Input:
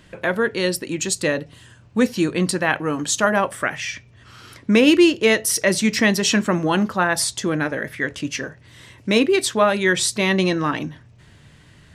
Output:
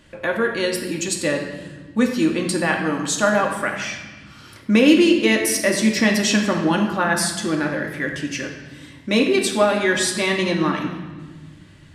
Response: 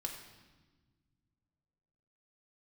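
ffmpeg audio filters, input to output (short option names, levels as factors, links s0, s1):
-filter_complex "[1:a]atrim=start_sample=2205,asetrate=42336,aresample=44100[s0];[0:a][s0]afir=irnorm=-1:irlink=0"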